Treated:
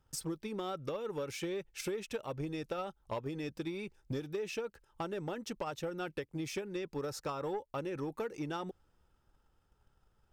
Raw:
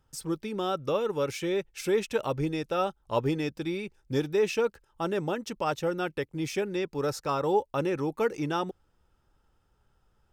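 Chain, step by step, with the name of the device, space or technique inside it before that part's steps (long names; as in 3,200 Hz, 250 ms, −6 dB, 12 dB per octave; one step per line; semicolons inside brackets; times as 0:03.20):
drum-bus smash (transient designer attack +8 dB, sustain +3 dB; downward compressor 6 to 1, threshold −28 dBFS, peak gain reduction 13 dB; soft clipping −23.5 dBFS, distortion −18 dB)
level −5 dB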